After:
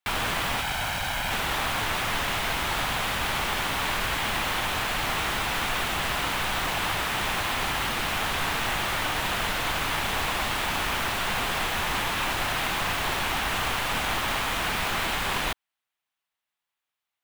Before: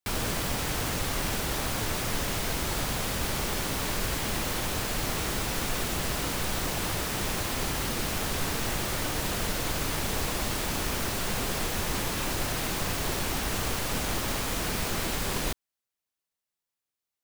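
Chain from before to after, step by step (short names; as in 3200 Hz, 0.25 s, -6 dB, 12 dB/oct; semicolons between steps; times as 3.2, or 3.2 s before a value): 0.61–1.31 minimum comb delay 1.3 ms; band shelf 1600 Hz +10 dB 2.7 oct; gain -2.5 dB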